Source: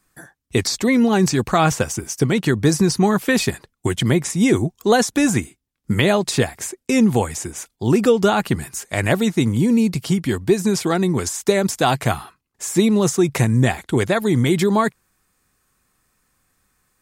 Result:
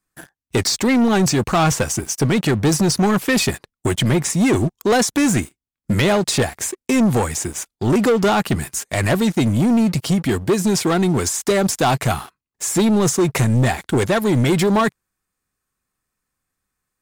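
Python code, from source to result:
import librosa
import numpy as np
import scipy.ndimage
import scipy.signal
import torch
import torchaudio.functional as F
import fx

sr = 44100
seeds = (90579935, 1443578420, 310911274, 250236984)

y = fx.leveller(x, sr, passes=3)
y = y * librosa.db_to_amplitude(-7.0)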